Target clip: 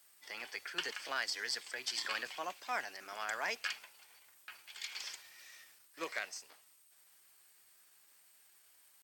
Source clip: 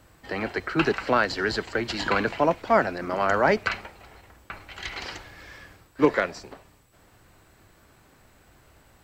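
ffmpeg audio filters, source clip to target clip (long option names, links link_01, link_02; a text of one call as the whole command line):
ffmpeg -i in.wav -af "aderivative,asetrate=48091,aresample=44100,atempo=0.917004" out.wav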